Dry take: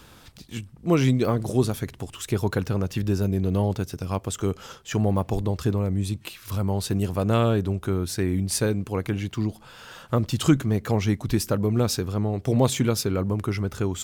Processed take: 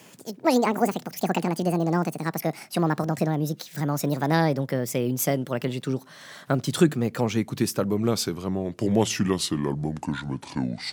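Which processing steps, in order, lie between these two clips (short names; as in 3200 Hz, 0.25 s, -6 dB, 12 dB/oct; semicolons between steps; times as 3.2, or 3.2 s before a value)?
speed glide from 196% -> 61%; HPF 130 Hz 24 dB/oct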